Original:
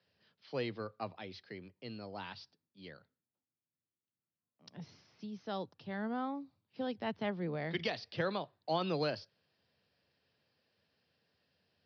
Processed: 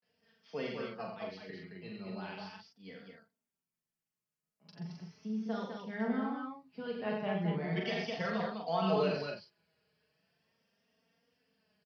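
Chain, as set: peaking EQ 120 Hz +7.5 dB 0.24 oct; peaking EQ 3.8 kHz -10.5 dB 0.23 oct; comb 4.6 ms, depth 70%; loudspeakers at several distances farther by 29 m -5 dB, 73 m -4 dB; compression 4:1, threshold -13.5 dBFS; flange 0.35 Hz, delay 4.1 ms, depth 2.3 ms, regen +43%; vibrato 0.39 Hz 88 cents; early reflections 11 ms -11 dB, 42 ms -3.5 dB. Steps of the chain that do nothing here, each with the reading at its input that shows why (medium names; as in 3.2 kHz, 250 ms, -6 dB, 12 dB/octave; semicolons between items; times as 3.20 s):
compression, threshold -13.5 dBFS: peak at its input -18.5 dBFS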